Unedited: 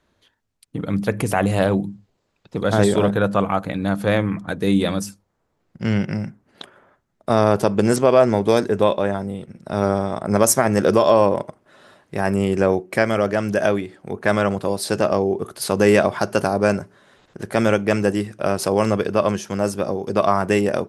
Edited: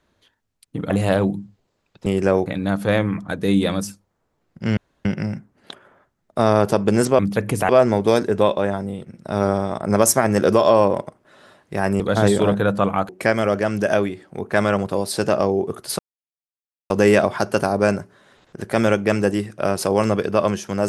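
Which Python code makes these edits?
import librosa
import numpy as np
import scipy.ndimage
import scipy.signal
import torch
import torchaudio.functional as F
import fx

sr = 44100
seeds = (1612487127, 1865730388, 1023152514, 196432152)

y = fx.edit(x, sr, fx.move(start_s=0.9, length_s=0.5, to_s=8.1),
    fx.swap(start_s=2.56, length_s=1.09, other_s=12.41, other_length_s=0.4),
    fx.insert_room_tone(at_s=5.96, length_s=0.28),
    fx.insert_silence(at_s=15.71, length_s=0.91), tone=tone)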